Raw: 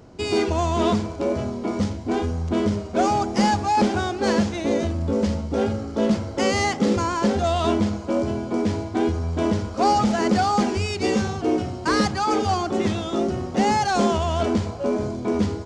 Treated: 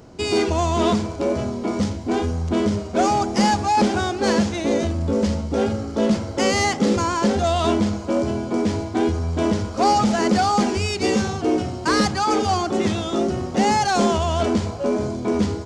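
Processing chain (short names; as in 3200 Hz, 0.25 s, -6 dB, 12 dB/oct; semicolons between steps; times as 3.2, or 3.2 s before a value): high shelf 5200 Hz +4.5 dB; notches 50/100 Hz; in parallel at -10.5 dB: soft clip -19.5 dBFS, distortion -12 dB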